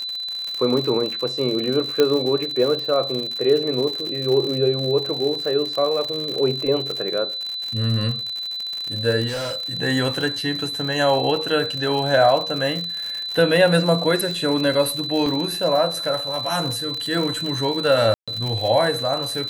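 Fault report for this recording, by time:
surface crackle 90 per second −25 dBFS
whistle 4,000 Hz −26 dBFS
0:02.00: click −5 dBFS
0:09.27–0:09.75: clipping −24 dBFS
0:15.26: drop-out 3.1 ms
0:18.14–0:18.28: drop-out 136 ms

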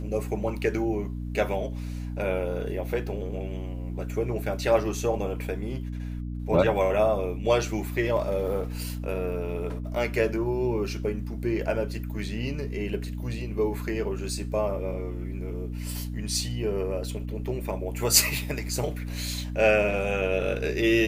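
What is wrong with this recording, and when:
mains hum 60 Hz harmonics 5 −33 dBFS

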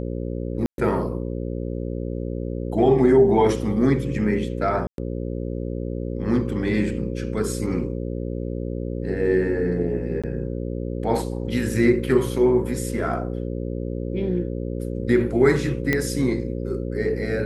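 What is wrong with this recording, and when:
mains buzz 60 Hz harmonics 9 −28 dBFS
0:00.66–0:00.78: drop-out 122 ms
0:04.87–0:04.98: drop-out 112 ms
0:10.22–0:10.24: drop-out 16 ms
0:15.93: click −8 dBFS

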